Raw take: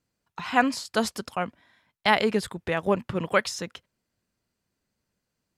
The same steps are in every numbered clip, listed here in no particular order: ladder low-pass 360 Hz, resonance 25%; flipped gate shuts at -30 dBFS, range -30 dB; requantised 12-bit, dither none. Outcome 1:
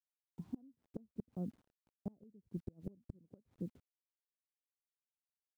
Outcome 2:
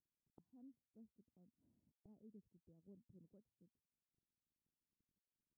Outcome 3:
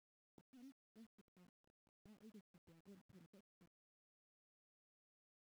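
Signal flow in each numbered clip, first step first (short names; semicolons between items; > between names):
ladder low-pass > requantised > flipped gate; requantised > flipped gate > ladder low-pass; flipped gate > ladder low-pass > requantised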